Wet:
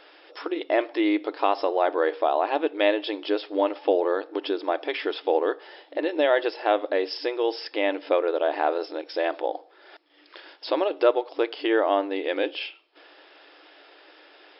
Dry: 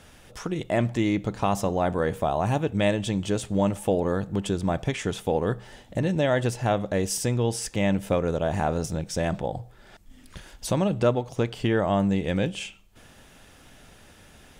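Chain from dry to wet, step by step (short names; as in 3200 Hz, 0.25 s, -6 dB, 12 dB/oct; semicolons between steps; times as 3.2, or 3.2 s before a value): FFT band-pass 290–5400 Hz; gain +3 dB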